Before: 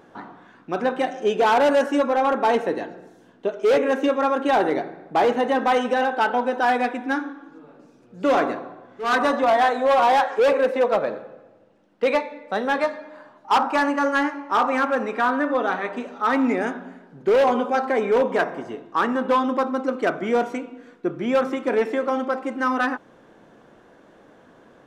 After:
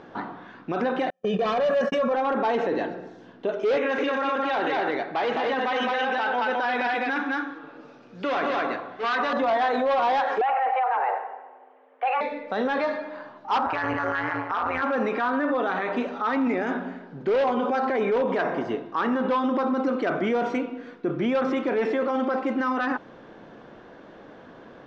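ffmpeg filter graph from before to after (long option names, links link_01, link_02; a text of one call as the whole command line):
ffmpeg -i in.wav -filter_complex "[0:a]asettb=1/sr,asplit=3[link_01][link_02][link_03];[link_01]atrim=end=1.104[link_04];[link_02]atrim=start=1.1:end=2.14,asetpts=PTS-STARTPTS,afade=type=in:duration=0.004:curve=qsin,afade=type=out:start_time=1.036:duration=0.004:curve=qsin,agate=range=-51dB:threshold=-28dB:ratio=16:release=100:detection=peak,equalizer=frequency=200:width_type=o:width=0.8:gain=12.5,aecho=1:1:1.7:0.89,atrim=end_sample=45864[link_05];[link_03]atrim=start=2.136[link_06];[link_04][link_05]acrossfade=duration=0.004:curve1=hsin:curve2=qsin[link_07];[link_07][link_06]acrossfade=duration=0.004:curve1=qsin:curve2=hsin,asettb=1/sr,asplit=3[link_08][link_09][link_10];[link_08]atrim=end=3.774[link_11];[link_09]atrim=start=3.77:end=9.33,asetpts=PTS-STARTPTS,afade=type=in:duration=0.004:curve=qsin,afade=type=out:start_time=5.556:duration=0.004:curve=qsin,lowpass=frequency=2700:poles=1,tiltshelf=frequency=1100:gain=-7.5,aecho=1:1:212:0.668,atrim=end_sample=245196[link_12];[link_10]atrim=start=9.326[link_13];[link_11][link_12]acrossfade=duration=0.004:curve1=hsin:curve2=qsin[link_14];[link_14][link_13]acrossfade=duration=0.004:curve1=qsin:curve2=hsin,asettb=1/sr,asplit=3[link_15][link_16][link_17];[link_15]atrim=end=10.414[link_18];[link_16]atrim=start=10.41:end=12.21,asetpts=PTS-STARTPTS,afade=type=in:duration=0.004:curve=qsin,afade=type=out:start_time=1.796:duration=0.004:curve=qsin,lowpass=frequency=2300:width=0.5412,lowpass=frequency=2300:width=1.3066,afreqshift=260[link_19];[link_17]atrim=start=12.206[link_20];[link_18][link_19]acrossfade=duration=0.004:curve1=hsin:curve2=qsin[link_21];[link_21][link_20]acrossfade=duration=0.004:curve1=qsin:curve2=hsin,asettb=1/sr,asplit=3[link_22][link_23][link_24];[link_22]atrim=end=13.664[link_25];[link_23]atrim=start=13.66:end=14.82,asetpts=PTS-STARTPTS,afade=type=in:duration=0.004:curve=qsin,afade=type=out:start_time=1.156:duration=0.004:curve=qsin,equalizer=frequency=1700:width_type=o:width=2.3:gain=9,tremolo=f=170:d=0.889[link_26];[link_24]atrim=start=14.816[link_27];[link_25][link_26]acrossfade=duration=0.004:curve1=hsin:curve2=qsin[link_28];[link_28][link_27]acrossfade=duration=0.004:curve1=qsin:curve2=hsin,lowpass=frequency=5200:width=0.5412,lowpass=frequency=5200:width=1.3066,alimiter=limit=-22.5dB:level=0:latency=1:release=21,volume=5dB" out.wav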